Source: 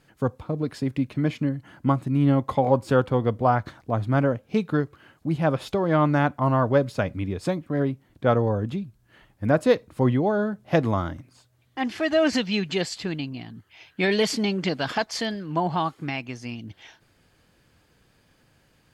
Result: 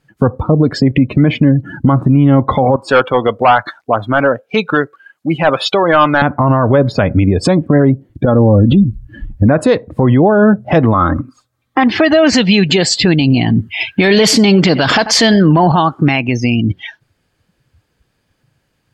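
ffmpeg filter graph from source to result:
-filter_complex "[0:a]asettb=1/sr,asplit=3[a][b][c];[a]atrim=end=2.764[d];[b]atrim=start=2.76:end=6.22,asetpts=PTS-STARTPTS,afade=t=in:d=0.004:c=qsin,afade=t=out:st=3.456:d=0.004:c=qsin,highpass=f=1.4k:p=1,asoftclip=type=hard:threshold=-24dB[e];[c]atrim=start=6.216[f];[d][e]acrossfade=d=0.004:c1=hsin:c2=qsin[g];[g][f]acrossfade=d=0.004:c1=qsin:c2=hsin,asettb=1/sr,asplit=3[h][i][j];[h]atrim=end=8.254[k];[i]atrim=start=8.25:end=9.49,asetpts=PTS-STARTPTS,afade=t=in:d=0.004:c=qsin,afade=t=out:st=1.236:d=0.004:c=qsin,lowshelf=f=260:g=10.5,aecho=1:1:3.6:0.49,atrim=end_sample=54684,acompressor=threshold=-26dB:ratio=10:attack=3.2:release=140:knee=1:detection=peak[l];[j]atrim=start=9.486[m];[k][l]acrossfade=d=0.004:c1=hsin:c2=qsin[n];[n][m]acrossfade=d=0.004:c1=qsin:c2=hsin,asettb=1/sr,asplit=3[o][p][q];[o]atrim=end=10.944[r];[p]atrim=start=10.94:end=11.84,asetpts=PTS-STARTPTS,afade=t=in:d=0.004:c=qsin,afade=t=out:st=0.896:d=0.004:c=qsin,equalizer=f=1.2k:w=5.3:g=11,bandreject=f=2.9k:w=23,aecho=1:1:3.8:0.38,atrim=end_sample=39690[s];[q]atrim=start=11.836[t];[r][s]acrossfade=d=0.004:c1=hsin:c2=qsin[u];[u][t]acrossfade=d=0.004:c1=qsin:c2=hsin,asettb=1/sr,asplit=3[v][w][x];[v]atrim=end=13.214[y];[w]atrim=start=13.21:end=15.72,asetpts=PTS-STARTPTS,afade=t=in:d=0.004:c=qsin,afade=t=out:st=2.506:d=0.004:c=qsin,acontrast=67,aecho=1:1:90:0.0708,atrim=end_sample=110691[z];[x]atrim=start=15.716[aa];[y][z]acrossfade=d=0.004:c1=hsin:c2=qsin[ab];[ab][aa]acrossfade=d=0.004:c1=qsin:c2=hsin,afftdn=nr=28:nf=-42,acompressor=threshold=-32dB:ratio=2,alimiter=level_in=26.5dB:limit=-1dB:release=50:level=0:latency=1,volume=-1dB"

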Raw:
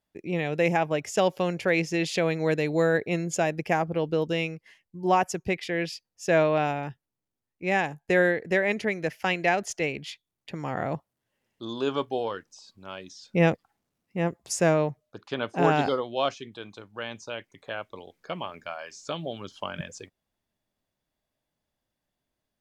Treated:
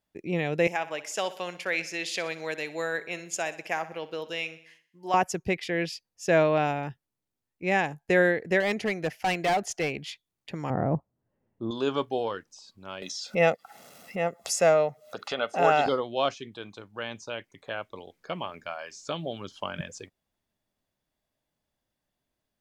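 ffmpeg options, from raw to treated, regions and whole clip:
-filter_complex "[0:a]asettb=1/sr,asplit=3[a][b][c];[a]atrim=end=0.674[d];[b]atrim=start=0.67:end=5.14,asetpts=PTS-STARTPTS,afade=t=in:d=0.004:c=qsin,afade=t=out:st=4.466:d=0.004:c=qsin,highpass=f=1.3k:p=1,aecho=1:1:62|124|186|248|310:0.168|0.089|0.0472|0.025|0.0132,atrim=end_sample=197127[e];[c]atrim=start=5.136[f];[d][e]acrossfade=d=0.004:c1=hsin:c2=qsin[g];[g][f]acrossfade=d=0.004:c1=qsin:c2=hsin,asettb=1/sr,asplit=3[h][i][j];[h]atrim=end=8.604[k];[i]atrim=start=8.6:end=9.99,asetpts=PTS-STARTPTS,afade=t=in:d=0.004:c=qsin,afade=t=out:st=1.386:d=0.004:c=qsin,equalizer=f=750:w=6.9:g=8.5,asoftclip=type=hard:threshold=-21.5dB[l];[j]atrim=start=9.986[m];[k][l]acrossfade=d=0.004:c1=hsin:c2=qsin[n];[n][m]acrossfade=d=0.004:c1=qsin:c2=hsin,asettb=1/sr,asplit=3[o][p][q];[o]atrim=end=10.704[r];[p]atrim=start=10.7:end=11.71,asetpts=PTS-STARTPTS,afade=t=in:d=0.004:c=qsin,afade=t=out:st=1.006:d=0.004:c=qsin,lowpass=1.1k,lowshelf=f=380:g=8[s];[q]atrim=start=11.706[t];[r][s]acrossfade=d=0.004:c1=hsin:c2=qsin[u];[u][t]acrossfade=d=0.004:c1=qsin:c2=hsin,asettb=1/sr,asplit=3[v][w][x];[v]atrim=end=13.024[y];[w]atrim=start=13.02:end=15.86,asetpts=PTS-STARTPTS,afade=t=in:d=0.004:c=qsin,afade=t=out:st=2.836:d=0.004:c=qsin,highpass=300,aecho=1:1:1.5:0.62,atrim=end_sample=125244,acompressor=mode=upward:threshold=-25dB:ratio=2.5:attack=3.2:release=140:knee=2.83:detection=peak[z];[x]atrim=start=15.856[aa];[y][z]acrossfade=d=0.004:c1=hsin:c2=qsin[ab];[ab][aa]acrossfade=d=0.004:c1=qsin:c2=hsin"

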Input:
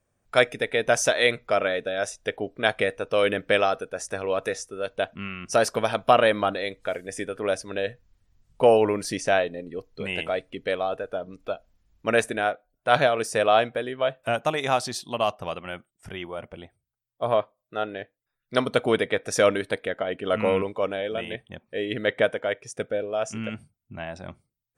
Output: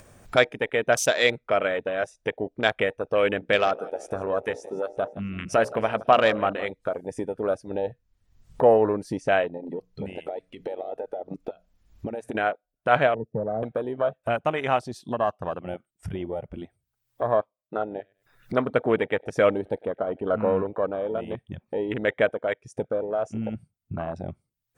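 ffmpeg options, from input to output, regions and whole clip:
-filter_complex "[0:a]asettb=1/sr,asplit=3[a][b][c];[a]atrim=end=3.374[d];[b]atrim=start=3.37:end=6.71,asetpts=PTS-STARTPTS,afade=t=in:d=0.004:c=qsin,afade=t=out:st=3.336:d=0.004:c=qsin,bandreject=f=60:t=h:w=6,bandreject=f=120:t=h:w=6,bandreject=f=180:t=h:w=6,bandreject=f=240:t=h:w=6,bandreject=f=300:t=h:w=6,bandreject=f=360:t=h:w=6,bandreject=f=420:t=h:w=6,bandreject=f=480:t=h:w=6,bandreject=f=540:t=h:w=6,bandreject=f=600:t=h:w=6,aecho=1:1:166|332|498|664:0.126|0.0655|0.034|0.0177,atrim=end_sample=147294[e];[c]atrim=start=6.706[f];[d][e]acrossfade=d=0.004:c1=hsin:c2=qsin[g];[g][f]acrossfade=d=0.004:c1=qsin:c2=hsin,asettb=1/sr,asplit=3[h][i][j];[h]atrim=end=9.574[k];[i]atrim=start=9.57:end=12.35,asetpts=PTS-STARTPTS,afade=t=in:d=0.004:c=qsin,afade=t=out:st=2.776:d=0.004:c=qsin,bandreject=f=60:t=h:w=6,bandreject=f=120:t=h:w=6,bandreject=f=180:t=h:w=6,acompressor=threshold=-34dB:ratio=6:attack=3.2:release=140:knee=1:detection=peak[l];[j]atrim=start=12.346[m];[k][l]acrossfade=d=0.004:c1=hsin:c2=qsin[n];[n][m]acrossfade=d=0.004:c1=qsin:c2=hsin,asettb=1/sr,asplit=3[o][p][q];[o]atrim=end=13.144[r];[p]atrim=start=13.14:end=13.63,asetpts=PTS-STARTPTS,afade=t=in:d=0.004:c=qsin,afade=t=out:st=0.486:d=0.004:c=qsin,asuperpass=centerf=210:order=4:qfactor=0.85,lowshelf=f=200:g=7,aecho=1:1:1.6:0.56,atrim=end_sample=21609[s];[q]atrim=start=13.626[t];[r][s]acrossfade=d=0.004:c1=hsin:c2=qsin[u];[u][t]acrossfade=d=0.004:c1=qsin:c2=hsin,asettb=1/sr,asplit=3[v][w][x];[v]atrim=end=17.814[y];[w]atrim=start=17.81:end=21.15,asetpts=PTS-STARTPTS,afade=t=in:d=0.004:c=qsin,afade=t=out:st=3.336:d=0.004:c=qsin,highshelf=f=3.6k:g=-7,acompressor=mode=upward:threshold=-43dB:ratio=2.5:attack=3.2:release=140:knee=2.83:detection=peak,aecho=1:1:100|200:0.0668|0.0147,atrim=end_sample=147294[z];[x]atrim=start=21.146[aa];[y][z]acrossfade=d=0.004:c1=hsin:c2=qsin[ab];[ab][aa]acrossfade=d=0.004:c1=qsin:c2=hsin,afwtdn=0.0282,acompressor=mode=upward:threshold=-23dB:ratio=2.5"

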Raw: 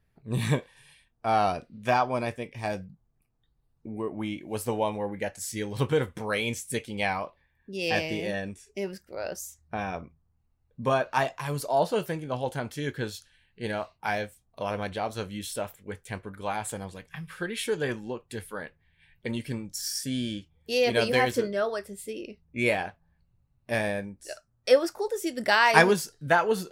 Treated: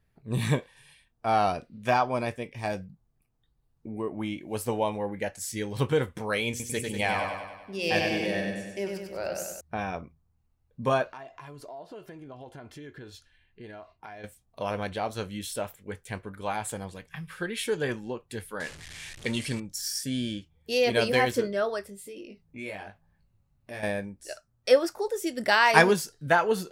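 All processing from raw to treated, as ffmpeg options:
-filter_complex "[0:a]asettb=1/sr,asplit=3[a][b][c];[a]atrim=end=6.504[d];[b]atrim=start=6.5:end=9.61,asetpts=PTS-STARTPTS,afade=t=in:d=0.004:c=qsin,afade=t=out:st=3.106:d=0.004:c=qsin,bandreject=f=60:t=h:w=6,bandreject=f=120:t=h:w=6,bandreject=f=180:t=h:w=6,bandreject=f=240:t=h:w=6,bandreject=f=300:t=h:w=6,bandreject=f=360:t=h:w=6,bandreject=f=420:t=h:w=6,bandreject=f=480:t=h:w=6,aecho=1:1:97|194|291|388|485|582|679|776:0.631|0.36|0.205|0.117|0.0666|0.038|0.0216|0.0123,atrim=end_sample=137151[e];[c]atrim=start=9.606[f];[d][e]acrossfade=d=0.004:c1=hsin:c2=qsin[g];[g][f]acrossfade=d=0.004:c1=qsin:c2=hsin,asettb=1/sr,asplit=3[h][i][j];[h]atrim=end=11.124[k];[i]atrim=start=11.12:end=14.24,asetpts=PTS-STARTPTS,afade=t=in:d=0.004:c=qsin,afade=t=out:st=3.116:d=0.004:c=qsin,lowpass=f=2.3k:p=1,aecho=1:1:2.9:0.4,atrim=end_sample=137592,acompressor=threshold=-41dB:ratio=6:attack=3.2:release=140:knee=1:detection=peak[l];[j]atrim=start=14.236[m];[k][l]acrossfade=d=0.004:c1=hsin:c2=qsin[n];[n][m]acrossfade=d=0.004:c1=qsin:c2=hsin,asettb=1/sr,asplit=3[o][p][q];[o]atrim=end=18.604[r];[p]atrim=start=18.6:end=19.6,asetpts=PTS-STARTPTS,afade=t=in:d=0.004:c=qsin,afade=t=out:st=0.996:d=0.004:c=qsin,aeval=exprs='val(0)+0.5*0.0075*sgn(val(0))':c=same,lowpass=f=10k:w=0.5412,lowpass=f=10k:w=1.3066,highshelf=f=2.5k:g=11.5[s];[q]atrim=start=19.596[t];[r][s]acrossfade=d=0.004:c1=hsin:c2=qsin[u];[u][t]acrossfade=d=0.004:c1=qsin:c2=hsin,asettb=1/sr,asplit=3[v][w][x];[v]atrim=end=21.874[y];[w]atrim=start=21.87:end=23.83,asetpts=PTS-STARTPTS,afade=t=in:d=0.004:c=qsin,afade=t=out:st=1.956:d=0.004:c=qsin,asplit=2[z][aa];[aa]adelay=20,volume=-3dB[ab];[z][ab]amix=inputs=2:normalize=0,atrim=end_sample=86436,acompressor=threshold=-45dB:ratio=2:attack=3.2:release=140:knee=1:detection=peak[ac];[x]atrim=start=23.826[ad];[y][ac]acrossfade=d=0.004:c1=hsin:c2=qsin[ae];[ae][ad]acrossfade=d=0.004:c1=qsin:c2=hsin"

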